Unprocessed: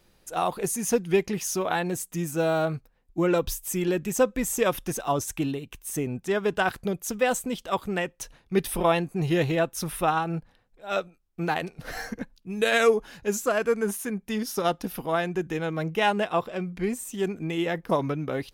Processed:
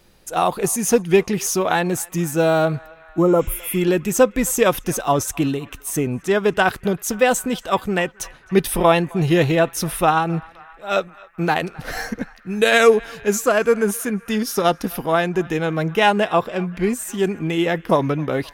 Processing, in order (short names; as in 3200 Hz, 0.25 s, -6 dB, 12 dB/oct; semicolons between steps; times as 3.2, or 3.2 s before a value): spectral repair 3.24–3.74, 1400–8900 Hz both; narrowing echo 0.262 s, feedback 83%, band-pass 1600 Hz, level -21.5 dB; gain +7.5 dB